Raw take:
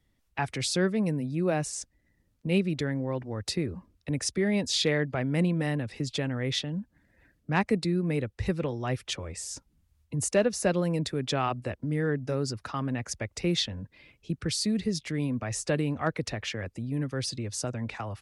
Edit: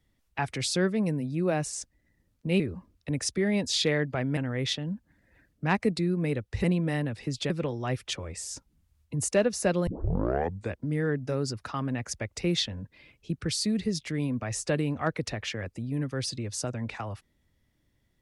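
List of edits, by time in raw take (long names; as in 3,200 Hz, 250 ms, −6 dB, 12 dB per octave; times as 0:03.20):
0:02.60–0:03.60: remove
0:05.37–0:06.23: move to 0:08.50
0:10.87: tape start 0.88 s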